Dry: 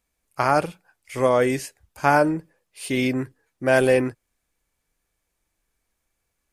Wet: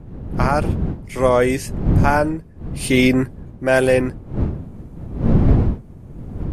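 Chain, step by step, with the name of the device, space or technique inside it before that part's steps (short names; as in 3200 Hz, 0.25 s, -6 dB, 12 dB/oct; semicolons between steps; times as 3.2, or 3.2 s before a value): smartphone video outdoors (wind noise 160 Hz -24 dBFS; AGC gain up to 13.5 dB; gain -1 dB; AAC 96 kbps 32000 Hz)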